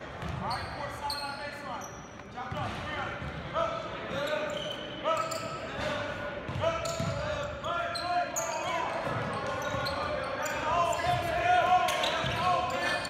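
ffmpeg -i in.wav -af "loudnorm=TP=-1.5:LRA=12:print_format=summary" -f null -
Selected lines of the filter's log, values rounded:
Input Integrated:    -30.6 LUFS
Input True Peak:     -14.2 dBTP
Input LRA:             7.6 LU
Input Threshold:     -40.7 LUFS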